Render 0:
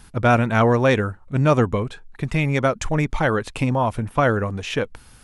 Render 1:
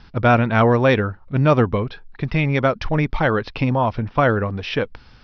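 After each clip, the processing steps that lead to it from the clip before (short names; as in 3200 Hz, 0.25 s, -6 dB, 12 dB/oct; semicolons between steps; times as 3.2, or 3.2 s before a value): steep low-pass 5500 Hz 96 dB/oct; gain +1.5 dB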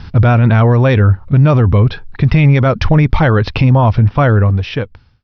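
ending faded out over 1.47 s; bell 96 Hz +12 dB 1.5 oct; maximiser +11.5 dB; gain -1 dB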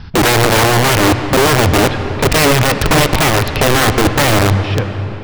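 wrapped overs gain 5.5 dB; reverb RT60 4.0 s, pre-delay 54 ms, DRR 8 dB; gain -1 dB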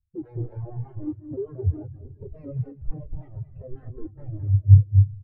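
compressor 5:1, threshold -16 dBFS, peak gain reduction 8 dB; on a send: echo 0.219 s -4 dB; on the sum: spectral expander 4:1; gain +4 dB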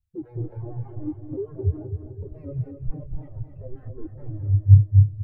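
feedback echo 0.258 s, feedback 47%, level -8.5 dB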